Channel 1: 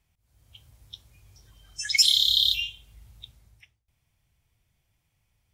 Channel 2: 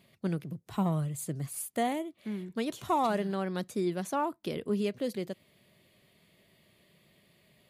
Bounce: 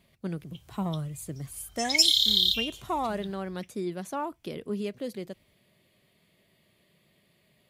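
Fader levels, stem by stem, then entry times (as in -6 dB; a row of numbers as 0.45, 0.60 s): -1.5, -2.0 dB; 0.00, 0.00 s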